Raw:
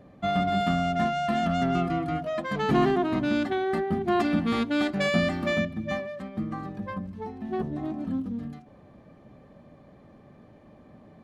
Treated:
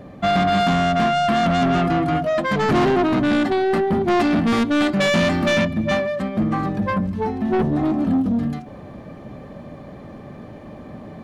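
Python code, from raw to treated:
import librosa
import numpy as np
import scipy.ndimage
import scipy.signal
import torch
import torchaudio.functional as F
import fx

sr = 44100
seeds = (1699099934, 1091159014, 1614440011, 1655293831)

p1 = fx.rider(x, sr, range_db=4, speed_s=2.0)
p2 = x + (p1 * librosa.db_to_amplitude(3.0))
p3 = 10.0 ** (-18.5 / 20.0) * np.tanh(p2 / 10.0 ** (-18.5 / 20.0))
y = p3 * librosa.db_to_amplitude(4.5)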